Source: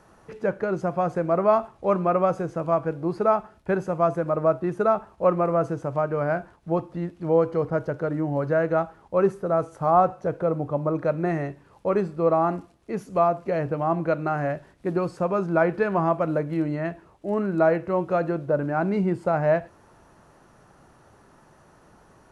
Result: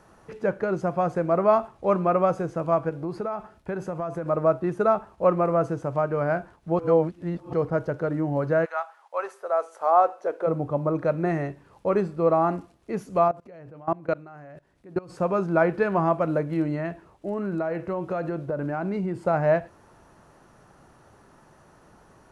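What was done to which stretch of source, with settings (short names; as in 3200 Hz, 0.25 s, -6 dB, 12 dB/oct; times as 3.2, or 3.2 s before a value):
2.89–4.29 compressor, threshold -26 dBFS
6.79–7.53 reverse
8.64–10.46 HPF 900 Hz -> 320 Hz 24 dB/oct
13.28–15.11 level quantiser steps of 22 dB
16.78–19.22 compressor, threshold -24 dBFS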